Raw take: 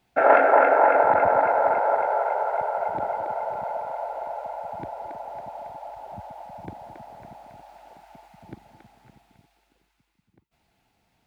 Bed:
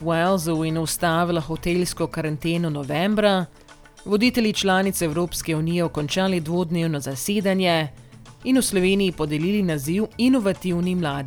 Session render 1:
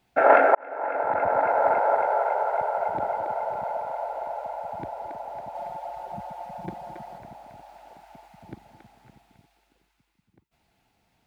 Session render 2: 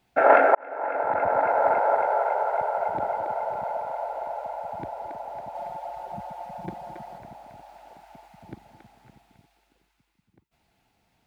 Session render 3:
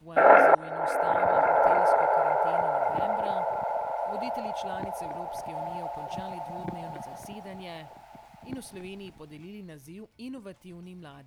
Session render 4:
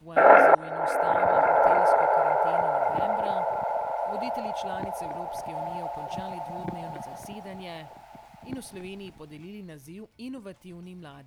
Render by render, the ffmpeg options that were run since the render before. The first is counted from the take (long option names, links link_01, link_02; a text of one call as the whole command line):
ffmpeg -i in.wav -filter_complex "[0:a]asettb=1/sr,asplit=3[link_01][link_02][link_03];[link_01]atrim=end=5.544[link_04];[link_02]atrim=start=5.54:end=7.18,asetpts=PTS-STARTPTS,afade=type=in:duration=0.004:curve=qsin,afade=type=out:start_time=1.636:duration=0.004:curve=qsin,aecho=1:1:5.6:0.92,atrim=end_sample=72324[link_05];[link_03]atrim=start=7.176[link_06];[link_04][link_05]acrossfade=duration=0.004:curve1=hsin:curve2=qsin[link_07];[link_07][link_06]acrossfade=duration=0.004:curve1=qsin:curve2=hsin,asplit=2[link_08][link_09];[link_08]atrim=end=0.55,asetpts=PTS-STARTPTS,afade=type=out:start_time=0.546:duration=0.004:curve=hsin[link_10];[link_09]atrim=start=0.55,asetpts=PTS-STARTPTS,afade=type=in:duration=1.15[link_11];[link_10][link_11]concat=n=2:v=0:a=1" out.wav
ffmpeg -i in.wav -af anull out.wav
ffmpeg -i in.wav -i bed.wav -filter_complex "[1:a]volume=-22dB[link_01];[0:a][link_01]amix=inputs=2:normalize=0" out.wav
ffmpeg -i in.wav -af "volume=1.5dB" out.wav